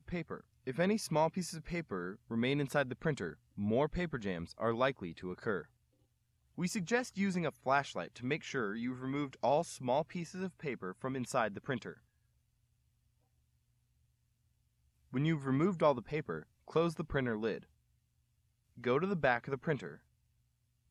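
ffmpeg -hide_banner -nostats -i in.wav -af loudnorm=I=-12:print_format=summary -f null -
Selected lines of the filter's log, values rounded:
Input Integrated:    -35.9 LUFS
Input True Peak:     -15.3 dBTP
Input LRA:             2.7 LU
Input Threshold:     -46.2 LUFS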